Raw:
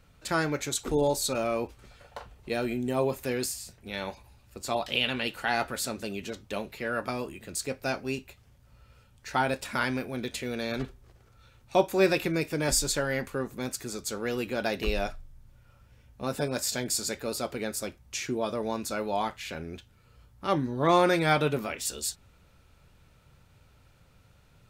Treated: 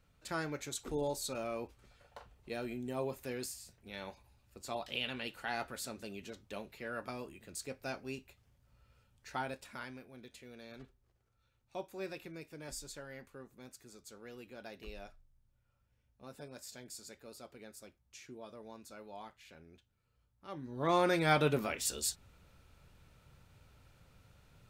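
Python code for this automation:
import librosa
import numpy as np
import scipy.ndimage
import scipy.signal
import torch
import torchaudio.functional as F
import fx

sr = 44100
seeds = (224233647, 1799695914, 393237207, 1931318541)

y = fx.gain(x, sr, db=fx.line((9.28, -10.5), (10.0, -19.5), (20.53, -19.5), (20.78, -9.5), (21.5, -3.0)))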